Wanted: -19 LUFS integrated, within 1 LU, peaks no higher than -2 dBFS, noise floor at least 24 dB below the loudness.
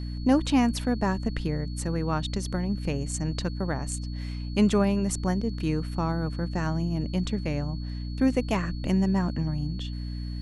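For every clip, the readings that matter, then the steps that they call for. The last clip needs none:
hum 60 Hz; harmonics up to 300 Hz; hum level -31 dBFS; steady tone 4400 Hz; tone level -48 dBFS; loudness -28.0 LUFS; peak -9.5 dBFS; loudness target -19.0 LUFS
-> de-hum 60 Hz, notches 5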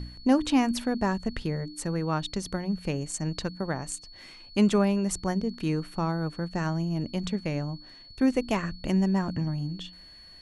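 hum none; steady tone 4400 Hz; tone level -48 dBFS
-> notch 4400 Hz, Q 30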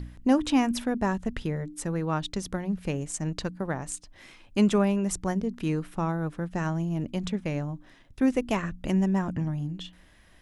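steady tone none; loudness -28.5 LUFS; peak -10.0 dBFS; loudness target -19.0 LUFS
-> gain +9.5 dB; limiter -2 dBFS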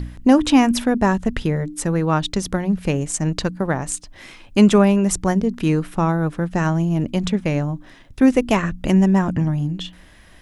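loudness -19.5 LUFS; peak -2.0 dBFS; noise floor -46 dBFS

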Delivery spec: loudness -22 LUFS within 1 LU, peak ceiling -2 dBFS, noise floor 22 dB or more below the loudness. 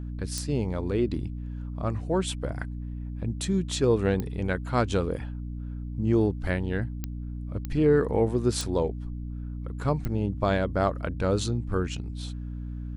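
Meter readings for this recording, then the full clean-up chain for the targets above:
clicks 6; hum 60 Hz; harmonics up to 300 Hz; hum level -32 dBFS; loudness -28.5 LUFS; peak -11.0 dBFS; loudness target -22.0 LUFS
-> de-click; de-hum 60 Hz, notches 5; gain +6.5 dB

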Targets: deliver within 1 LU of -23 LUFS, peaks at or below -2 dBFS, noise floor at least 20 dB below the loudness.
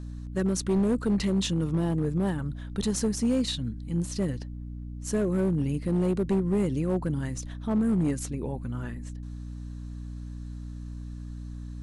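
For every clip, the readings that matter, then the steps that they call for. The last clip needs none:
clipped 1.9%; flat tops at -19.5 dBFS; hum 60 Hz; harmonics up to 300 Hz; hum level -36 dBFS; loudness -28.0 LUFS; peak -19.5 dBFS; loudness target -23.0 LUFS
-> clip repair -19.5 dBFS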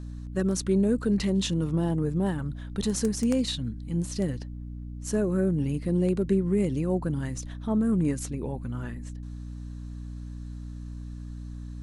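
clipped 0.0%; hum 60 Hz; harmonics up to 300 Hz; hum level -35 dBFS
-> notches 60/120/180/240/300 Hz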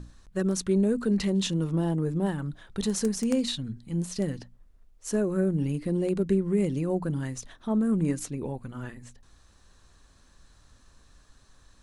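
hum none; loudness -28.0 LUFS; peak -11.5 dBFS; loudness target -23.0 LUFS
-> gain +5 dB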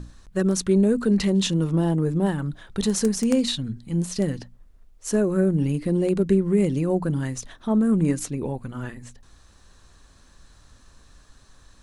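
loudness -23.0 LUFS; peak -6.5 dBFS; noise floor -54 dBFS

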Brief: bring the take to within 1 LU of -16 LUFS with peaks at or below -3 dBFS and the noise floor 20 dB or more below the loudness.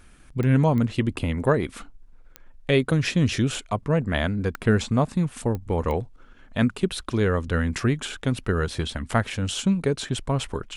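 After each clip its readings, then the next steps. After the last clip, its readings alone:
clicks 6; loudness -24.5 LUFS; peak -7.5 dBFS; loudness target -16.0 LUFS
-> de-click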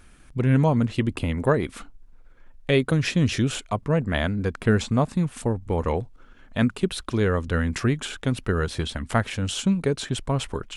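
clicks 0; loudness -24.5 LUFS; peak -7.5 dBFS; loudness target -16.0 LUFS
-> gain +8.5 dB; limiter -3 dBFS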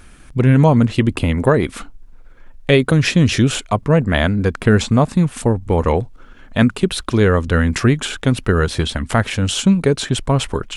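loudness -16.5 LUFS; peak -3.0 dBFS; noise floor -42 dBFS

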